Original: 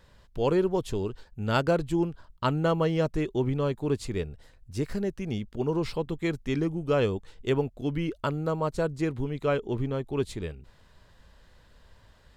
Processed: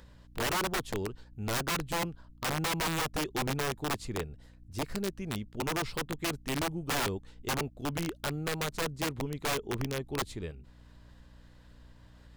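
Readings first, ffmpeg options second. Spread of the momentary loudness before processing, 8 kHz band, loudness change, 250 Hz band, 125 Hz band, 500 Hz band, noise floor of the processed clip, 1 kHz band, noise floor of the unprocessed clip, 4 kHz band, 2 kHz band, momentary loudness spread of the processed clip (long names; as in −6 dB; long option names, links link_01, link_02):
9 LU, +11.5 dB, −4.5 dB, −7.5 dB, −7.0 dB, −9.0 dB, −56 dBFS, −1.0 dB, −58 dBFS, +5.0 dB, +2.5 dB, 8 LU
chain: -af "acompressor=mode=upward:threshold=-48dB:ratio=2.5,aeval=exprs='val(0)+0.00316*(sin(2*PI*60*n/s)+sin(2*PI*2*60*n/s)/2+sin(2*PI*3*60*n/s)/3+sin(2*PI*4*60*n/s)/4+sin(2*PI*5*60*n/s)/5)':channel_layout=same,aeval=exprs='(mod(11.2*val(0)+1,2)-1)/11.2':channel_layout=same,volume=-4.5dB"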